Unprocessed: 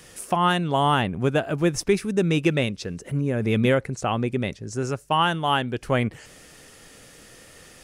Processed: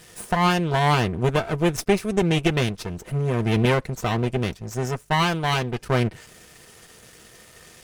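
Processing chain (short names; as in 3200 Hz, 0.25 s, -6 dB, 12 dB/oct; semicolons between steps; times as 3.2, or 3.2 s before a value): half-wave rectifier; notch comb 280 Hz; gain +5.5 dB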